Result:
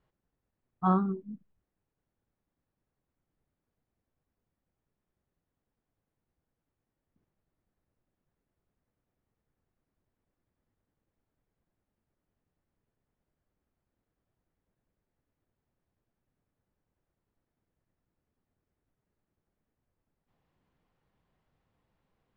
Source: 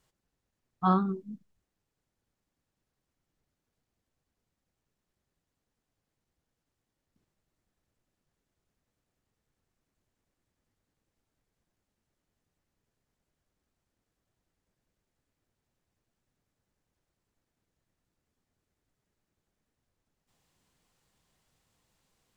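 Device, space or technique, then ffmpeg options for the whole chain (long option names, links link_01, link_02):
phone in a pocket: -af "lowpass=3100,highshelf=frequency=2300:gain=-10"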